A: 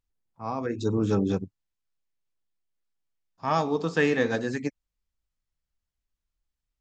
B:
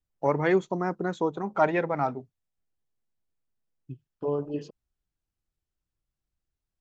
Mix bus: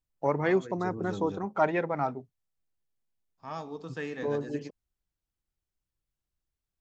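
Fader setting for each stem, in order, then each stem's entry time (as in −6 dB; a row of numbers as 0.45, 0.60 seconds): −13.5, −2.5 decibels; 0.00, 0.00 seconds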